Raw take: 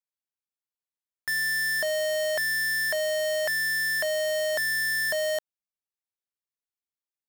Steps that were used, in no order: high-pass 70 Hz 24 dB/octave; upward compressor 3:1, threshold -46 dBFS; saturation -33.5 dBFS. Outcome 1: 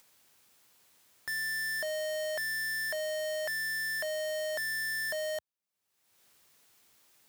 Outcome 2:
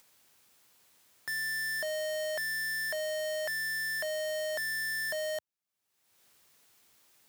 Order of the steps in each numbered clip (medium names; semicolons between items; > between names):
high-pass > saturation > upward compressor; saturation > upward compressor > high-pass